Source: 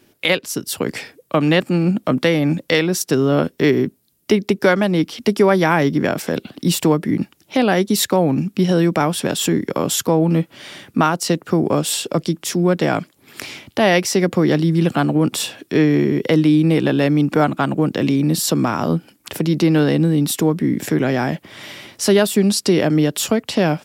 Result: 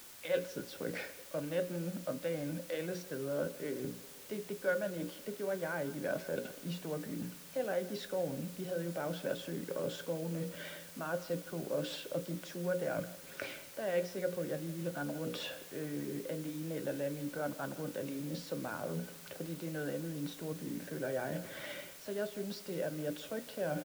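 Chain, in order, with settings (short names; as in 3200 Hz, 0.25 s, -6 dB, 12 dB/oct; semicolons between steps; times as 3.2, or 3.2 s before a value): bin magnitudes rounded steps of 15 dB; Bessel low-pass 3700 Hz, order 8; notches 60/120/180/240/300/360/420/480/540 Hz; reverse; compressor 12:1, threshold -29 dBFS, peak gain reduction 19.5 dB; reverse; resonator 58 Hz, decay 0.25 s, harmonics odd, mix 60%; small resonant body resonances 550/1500 Hz, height 14 dB, ringing for 30 ms; speakerphone echo 0.16 s, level -17 dB; on a send at -20 dB: reverb RT60 4.0 s, pre-delay 3 ms; on the sum: requantised 8-bit, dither triangular; gain -5 dB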